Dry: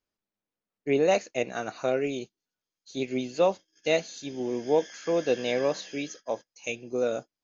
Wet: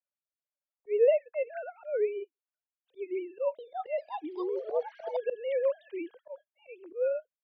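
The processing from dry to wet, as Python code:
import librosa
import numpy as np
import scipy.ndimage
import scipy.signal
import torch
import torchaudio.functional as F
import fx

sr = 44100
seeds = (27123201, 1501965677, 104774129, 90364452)

y = fx.sine_speech(x, sr)
y = fx.high_shelf(y, sr, hz=2200.0, db=-11.5)
y = fx.auto_swell(y, sr, attack_ms=155.0)
y = fx.echo_pitch(y, sr, ms=396, semitones=5, count=2, db_per_echo=-6.0, at=(3.19, 5.3))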